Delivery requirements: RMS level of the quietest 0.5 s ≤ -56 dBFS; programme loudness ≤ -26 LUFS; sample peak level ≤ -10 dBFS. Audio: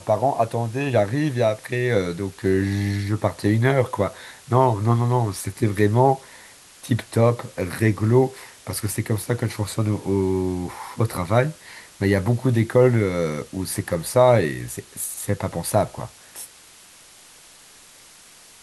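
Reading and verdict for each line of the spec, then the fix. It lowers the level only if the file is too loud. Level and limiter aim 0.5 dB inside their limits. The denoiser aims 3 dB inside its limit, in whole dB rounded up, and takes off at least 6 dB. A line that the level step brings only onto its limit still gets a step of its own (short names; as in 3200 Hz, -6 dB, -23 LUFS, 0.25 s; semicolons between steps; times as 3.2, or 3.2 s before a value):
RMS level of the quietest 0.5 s -48 dBFS: fail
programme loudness -22.0 LUFS: fail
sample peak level -4.0 dBFS: fail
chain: denoiser 7 dB, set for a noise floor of -48 dBFS; gain -4.5 dB; limiter -10.5 dBFS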